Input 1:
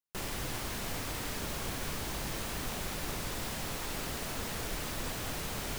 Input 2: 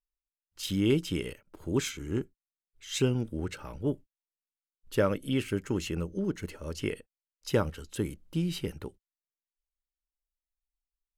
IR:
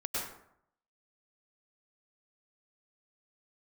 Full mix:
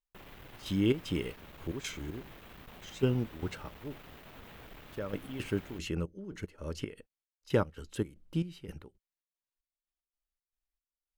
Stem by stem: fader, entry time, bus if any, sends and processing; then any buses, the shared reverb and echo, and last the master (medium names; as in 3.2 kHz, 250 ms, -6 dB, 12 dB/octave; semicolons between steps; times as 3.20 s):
-11.0 dB, 0.00 s, no send, high-order bell 7.4 kHz -14.5 dB; one-sided clip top -40.5 dBFS
-1.0 dB, 0.00 s, no send, treble shelf 5.9 kHz -7.5 dB; trance gate "x..x.xx.x" 114 bpm -12 dB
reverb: none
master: none